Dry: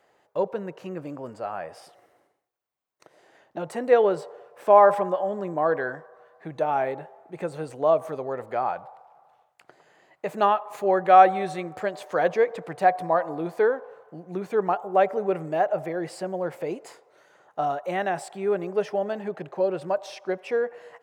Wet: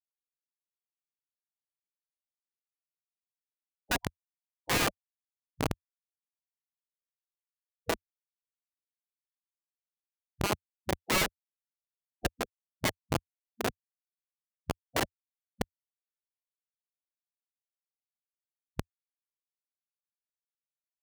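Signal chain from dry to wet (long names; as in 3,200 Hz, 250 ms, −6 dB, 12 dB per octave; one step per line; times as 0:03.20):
repeating echo 800 ms, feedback 45%, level −12 dB
comparator with hysteresis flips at −13 dBFS
gate on every frequency bin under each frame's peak −10 dB weak
level +5.5 dB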